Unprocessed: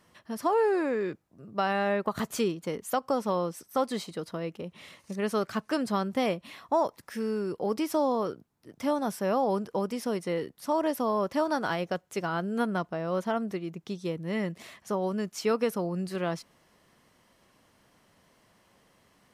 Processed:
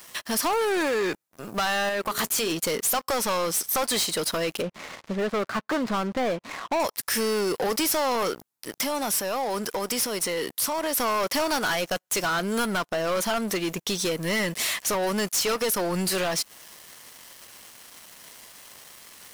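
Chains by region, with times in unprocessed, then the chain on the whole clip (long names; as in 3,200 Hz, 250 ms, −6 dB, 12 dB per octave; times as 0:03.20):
0:01.89–0:02.52: output level in coarse steps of 11 dB + mains-hum notches 60/120/180/240/300/360/420 Hz
0:04.62–0:06.80: running median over 15 samples + upward compression, threshold −46 dBFS + head-to-tape spacing loss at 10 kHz 24 dB
0:08.81–0:10.97: downward compressor 5 to 1, threshold −37 dBFS + one half of a high-frequency compander encoder only
whole clip: spectral tilt +4 dB per octave; downward compressor 2 to 1, threshold −38 dBFS; leveller curve on the samples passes 5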